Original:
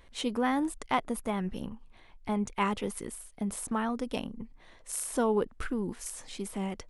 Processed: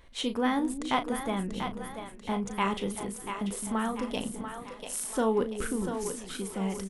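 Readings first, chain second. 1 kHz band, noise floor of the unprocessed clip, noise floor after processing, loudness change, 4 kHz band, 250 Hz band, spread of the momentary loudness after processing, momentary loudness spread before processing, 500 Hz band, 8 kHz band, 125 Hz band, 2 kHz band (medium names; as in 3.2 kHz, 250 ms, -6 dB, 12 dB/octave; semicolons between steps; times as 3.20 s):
+1.0 dB, -57 dBFS, -47 dBFS, +1.0 dB, +4.0 dB, +1.5 dB, 9 LU, 14 LU, +1.5 dB, +1.0 dB, +1.5 dB, +1.5 dB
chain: dynamic bell 3.4 kHz, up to +5 dB, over -55 dBFS, Q 4; doubling 36 ms -10 dB; two-band feedback delay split 400 Hz, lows 212 ms, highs 689 ms, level -7.5 dB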